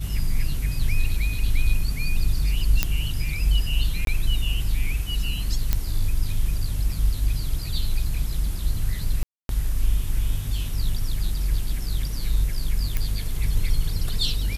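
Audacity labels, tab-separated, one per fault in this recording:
2.830000	2.830000	pop -4 dBFS
4.050000	4.070000	gap 22 ms
5.730000	5.730000	pop -7 dBFS
9.230000	9.490000	gap 0.262 s
12.970000	12.970000	pop -11 dBFS

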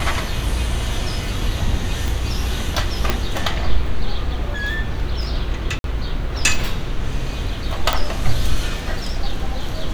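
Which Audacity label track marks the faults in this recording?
2.080000	2.080000	pop
3.100000	3.100000	pop -3 dBFS
5.790000	5.840000	gap 52 ms
7.930000	7.930000	pop

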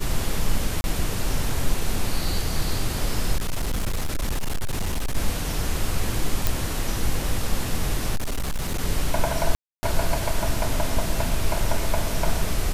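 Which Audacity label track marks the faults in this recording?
0.810000	0.840000	gap 31 ms
3.360000	5.170000	clipped -20.5 dBFS
6.470000	6.470000	pop
8.150000	8.800000	clipped -21.5 dBFS
9.550000	9.830000	gap 0.28 s

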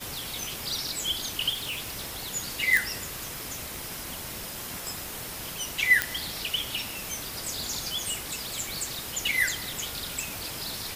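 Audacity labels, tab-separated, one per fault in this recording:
1.520000	2.270000	clipped -29 dBFS
2.770000	2.770000	pop
3.760000	3.760000	pop
4.870000	4.870000	pop
6.020000	6.020000	pop -5 dBFS
8.600000	8.600000	gap 2.8 ms

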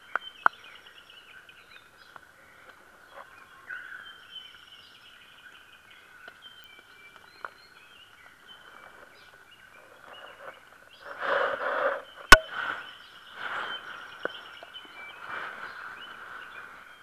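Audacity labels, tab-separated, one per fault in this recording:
6.640000	6.640000	pop -30 dBFS

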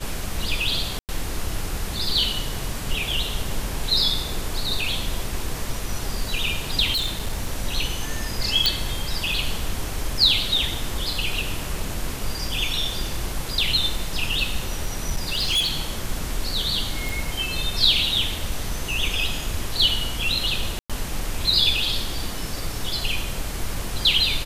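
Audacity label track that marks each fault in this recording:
0.990000	1.090000	gap 98 ms
6.920000	7.470000	clipped -20 dBFS
8.660000	8.660000	pop -3 dBFS
14.690000	15.770000	clipped -17.5 dBFS
17.090000	17.090000	pop
20.790000	20.900000	gap 0.106 s

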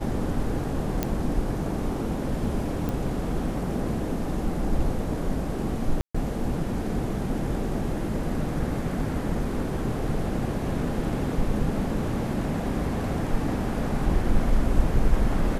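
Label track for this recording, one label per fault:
1.030000	1.030000	pop -10 dBFS
2.890000	2.890000	pop
6.010000	6.140000	gap 0.135 s

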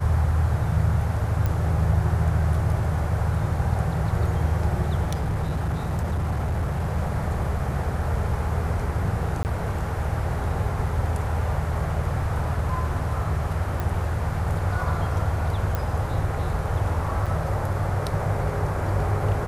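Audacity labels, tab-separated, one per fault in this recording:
1.460000	1.460000	pop -14 dBFS
5.030000	6.980000	clipped -21 dBFS
9.430000	9.450000	gap 19 ms
13.800000	13.800000	pop
15.750000	15.750000	pop -13 dBFS
17.260000	17.270000	gap 5.2 ms

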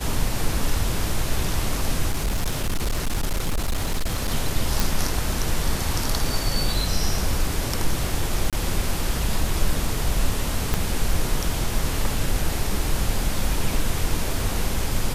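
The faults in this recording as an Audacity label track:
2.120000	4.320000	clipped -19 dBFS
4.800000	4.800000	pop
8.500000	8.530000	gap 27 ms
10.740000	10.740000	pop -7 dBFS

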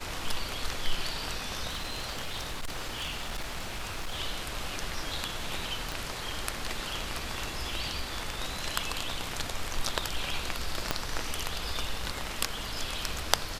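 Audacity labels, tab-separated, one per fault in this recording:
1.670000	4.200000	clipped -30 dBFS
5.920000	5.920000	pop
10.910000	10.910000	pop -10 dBFS

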